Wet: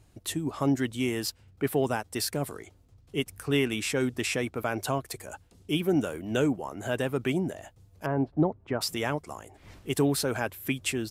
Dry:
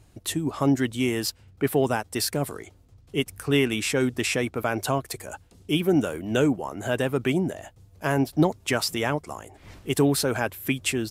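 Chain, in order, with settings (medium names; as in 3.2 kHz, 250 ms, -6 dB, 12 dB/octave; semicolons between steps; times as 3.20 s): 8.06–8.81 s: low-pass 1.1 kHz 12 dB/octave; trim -4 dB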